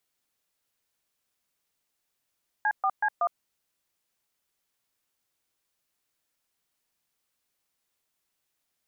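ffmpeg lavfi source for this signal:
ffmpeg -f lavfi -i "aevalsrc='0.0596*clip(min(mod(t,0.187),0.061-mod(t,0.187))/0.002,0,1)*(eq(floor(t/0.187),0)*(sin(2*PI*852*mod(t,0.187))+sin(2*PI*1633*mod(t,0.187)))+eq(floor(t/0.187),1)*(sin(2*PI*770*mod(t,0.187))+sin(2*PI*1209*mod(t,0.187)))+eq(floor(t/0.187),2)*(sin(2*PI*852*mod(t,0.187))+sin(2*PI*1633*mod(t,0.187)))+eq(floor(t/0.187),3)*(sin(2*PI*697*mod(t,0.187))+sin(2*PI*1209*mod(t,0.187))))':duration=0.748:sample_rate=44100" out.wav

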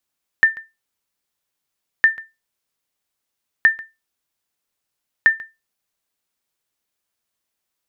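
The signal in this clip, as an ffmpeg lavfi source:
ffmpeg -f lavfi -i "aevalsrc='0.631*(sin(2*PI*1790*mod(t,1.61))*exp(-6.91*mod(t,1.61)/0.22)+0.0944*sin(2*PI*1790*max(mod(t,1.61)-0.14,0))*exp(-6.91*max(mod(t,1.61)-0.14,0)/0.22))':duration=6.44:sample_rate=44100" out.wav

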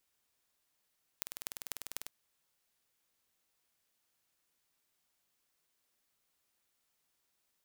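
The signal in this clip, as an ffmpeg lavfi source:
ffmpeg -f lavfi -i "aevalsrc='0.376*eq(mod(n,2194),0)*(0.5+0.5*eq(mod(n,10970),0))':duration=0.89:sample_rate=44100" out.wav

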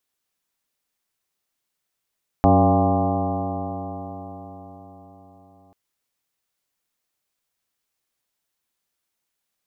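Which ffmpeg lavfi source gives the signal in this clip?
ffmpeg -f lavfi -i "aevalsrc='0.133*pow(10,-3*t/4.83)*sin(2*PI*91.85*t)+0.112*pow(10,-3*t/4.83)*sin(2*PI*184.57*t)+0.133*pow(10,-3*t/4.83)*sin(2*PI*279.03*t)+0.0531*pow(10,-3*t/4.83)*sin(2*PI*376.07*t)+0.0473*pow(10,-3*t/4.83)*sin(2*PI*476.49*t)+0.075*pow(10,-3*t/4.83)*sin(2*PI*581.03*t)+0.126*pow(10,-3*t/4.83)*sin(2*PI*690.39*t)+0.119*pow(10,-3*t/4.83)*sin(2*PI*805.22*t)+0.0188*pow(10,-3*t/4.83)*sin(2*PI*926.1*t)+0.0376*pow(10,-3*t/4.83)*sin(2*PI*1053.55*t)+0.0266*pow(10,-3*t/4.83)*sin(2*PI*1188.04*t)':duration=3.29:sample_rate=44100" out.wav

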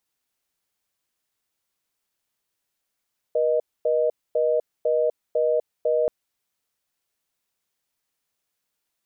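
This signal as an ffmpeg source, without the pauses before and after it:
ffmpeg -f lavfi -i "aevalsrc='0.0891*(sin(2*PI*480*t)+sin(2*PI*620*t))*clip(min(mod(t,0.5),0.25-mod(t,0.5))/0.005,0,1)':duration=2.73:sample_rate=44100" out.wav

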